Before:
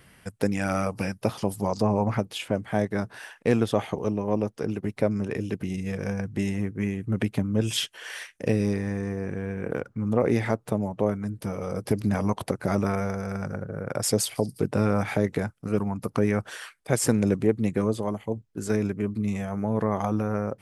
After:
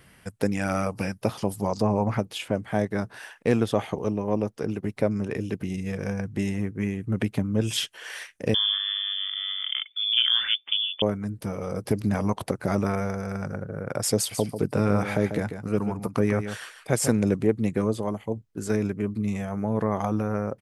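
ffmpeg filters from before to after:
-filter_complex "[0:a]asettb=1/sr,asplit=3[a][b][c];[a]atrim=end=8.544[d];[b]atrim=start=8.54:end=11.02,asetpts=PTS-STARTPTS,afade=t=in:d=0.004:c=qsin,afade=t=out:st=2.476:d=0.004:c=qsin,lowpass=f=3.1k:t=q:w=0.5098,lowpass=f=3.1k:t=q:w=0.6013,lowpass=f=3.1k:t=q:w=0.9,lowpass=f=3.1k:t=q:w=2.563,afreqshift=-3600[e];[c]atrim=start=11.016[f];[d][e]acrossfade=d=0.004:c1=hsin:c2=qsin[g];[g][f]acrossfade=d=0.004:c1=qsin:c2=hsin,asplit=3[h][i][j];[h]afade=t=out:st=14.31:d=0.02[k];[i]aecho=1:1:143:0.355,afade=t=in:st=14.31:d=0.02,afade=t=out:st=17.09:d=0.02[l];[j]afade=t=in:st=17.09:d=0.02[m];[k][l][m]amix=inputs=3:normalize=0"

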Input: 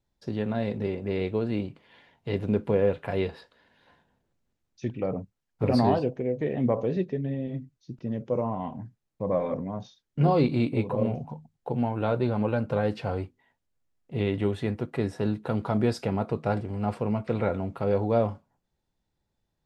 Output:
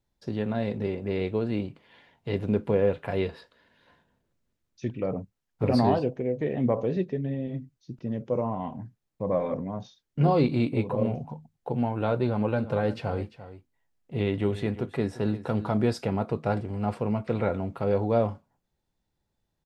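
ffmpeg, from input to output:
-filter_complex "[0:a]asettb=1/sr,asplit=3[a][b][c];[a]atrim=end=3.224[d];[b]atrim=start=3.22:end=5.07,asetpts=PTS-STARTPTS,afade=t=in:d=0.004:c=qsin,afade=t=out:st=1.846:d=0.004:c=qsin,bandreject=f=790:w=7.3[e];[c]atrim=start=5.066[f];[d][e]acrossfade=d=0.004:c1=hsin:c2=qsin[g];[g][f]acrossfade=d=0.004:c1=qsin:c2=hsin,asplit=3[h][i][j];[h]afade=t=out:st=12.57:d=0.02[k];[i]aecho=1:1:346:0.188,afade=t=in:st=12.57:d=0.02,afade=t=out:st=15.79:d=0.02[l];[j]afade=t=in:st=15.79:d=0.02[m];[k][l][m]amix=inputs=3:normalize=0"

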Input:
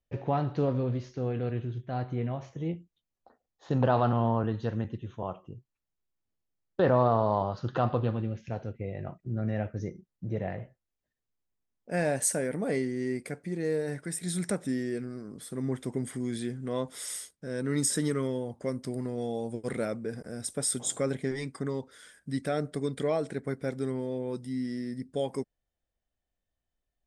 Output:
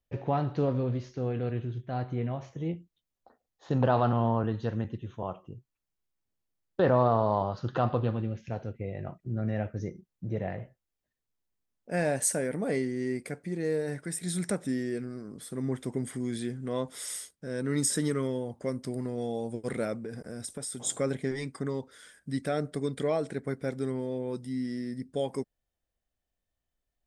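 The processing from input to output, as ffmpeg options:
-filter_complex "[0:a]asettb=1/sr,asplit=3[a][b][c];[a]atrim=end=20.024[d];[b]atrim=start=20.02:end=20.82,asetpts=PTS-STARTPTS,afade=t=in:d=0.004:c=qsin,afade=t=out:st=0.796:d=0.004:c=qsin,acompressor=threshold=-33dB:ratio=6:attack=3.2:release=140:knee=1:detection=peak[e];[c]atrim=start=20.816[f];[d][e]acrossfade=d=0.004:c1=hsin:c2=qsin[g];[g][f]acrossfade=d=0.004:c1=qsin:c2=hsin"

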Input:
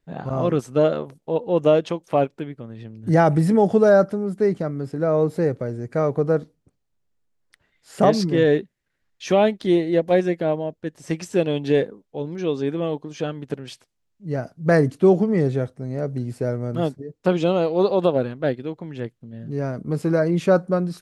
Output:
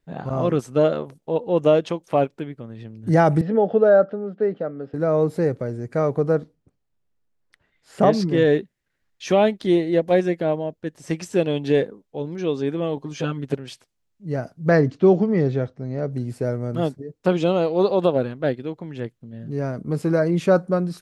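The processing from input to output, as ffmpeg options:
-filter_complex "[0:a]asettb=1/sr,asplit=3[a][b][c];[a]atrim=end=3.414[d];[b]atrim=start=3.41:end=4.94,asetpts=PTS-STARTPTS,afade=t=in:d=0.004:c=qsin,afade=t=out:st=1.526:d=0.004:c=qsin,highpass=270,equalizer=f=350:t=q:w=4:g=-6,equalizer=f=500:t=q:w=4:g=5,equalizer=f=1k:t=q:w=4:g=-9,equalizer=f=2.2k:t=q:w=4:g=-10,lowpass=f=3.1k:w=0.5412,lowpass=f=3.1k:w=1.3066[e];[c]atrim=start=4.936[f];[d][e]acrossfade=d=0.004:c1=hsin:c2=qsin[g];[g][f]acrossfade=d=0.004:c1=qsin:c2=hsin,asettb=1/sr,asplit=3[h][i][j];[h]atrim=end=6.364[k];[i]atrim=start=6.36:end=8.31,asetpts=PTS-STARTPTS,afade=t=in:d=0.004:c=qsin,afade=t=out:st=1.946:d=0.004:c=qsin,highshelf=f=4.9k:g=-8[l];[j]atrim=start=8.306[m];[k][l]acrossfade=d=0.004:c1=hsin:c2=qsin[n];[n][m]acrossfade=d=0.004:c1=qsin:c2=hsin,asettb=1/sr,asplit=3[o][p][q];[o]atrim=end=12.964[r];[p]atrim=start=12.96:end=13.57,asetpts=PTS-STARTPTS,afade=t=in:d=0.004:c=qsin,afade=t=out:st=0.606:d=0.004:c=qsin,aecho=1:1:7.5:0.96,atrim=end_sample=26901[s];[q]atrim=start=13.566[t];[r][s]acrossfade=d=0.004:c1=hsin:c2=qsin[u];[u][t]acrossfade=d=0.004:c1=qsin:c2=hsin,asettb=1/sr,asplit=3[v][w][x];[v]atrim=end=14.694[y];[w]atrim=start=14.69:end=16.12,asetpts=PTS-STARTPTS,afade=t=in:d=0.004:c=qsin,afade=t=out:st=1.426:d=0.004:c=qsin,lowpass=f=5.7k:w=0.5412,lowpass=f=5.7k:w=1.3066[z];[x]atrim=start=16.116[aa];[y][z]acrossfade=d=0.004:c1=hsin:c2=qsin[ab];[ab][aa]acrossfade=d=0.004:c1=qsin:c2=hsin"

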